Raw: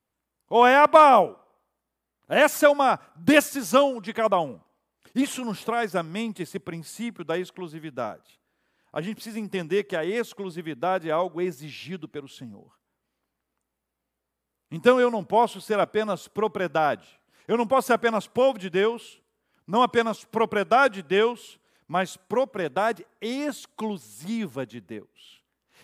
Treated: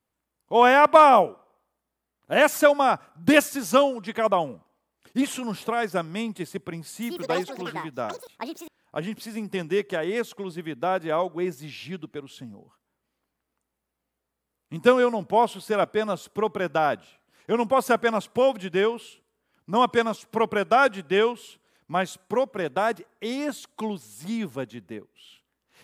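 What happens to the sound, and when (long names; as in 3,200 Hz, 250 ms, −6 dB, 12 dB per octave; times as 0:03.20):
0:06.88–0:09.36: delay with pitch and tempo change per echo 143 ms, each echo +7 semitones, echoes 2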